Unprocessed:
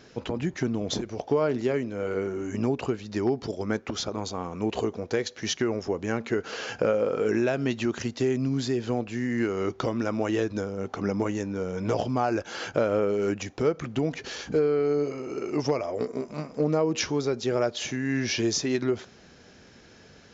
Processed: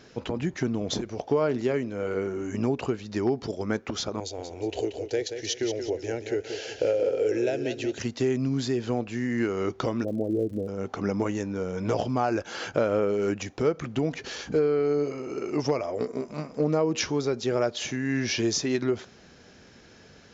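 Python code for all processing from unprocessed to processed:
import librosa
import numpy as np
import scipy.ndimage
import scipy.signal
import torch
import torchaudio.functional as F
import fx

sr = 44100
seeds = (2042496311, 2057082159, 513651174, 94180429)

y = fx.chain(x, sr, fx.fixed_phaser(hz=470.0, stages=4),
    fx.echo_feedback(ms=181, feedback_pct=35, wet_db=-8.5), at=(4.2, 7.99))
y = fx.steep_lowpass(y, sr, hz=620.0, slope=36, at=(10.03, 10.67), fade=0.02)
y = fx.dmg_crackle(y, sr, seeds[0], per_s=150.0, level_db=-43.0, at=(10.03, 10.67), fade=0.02)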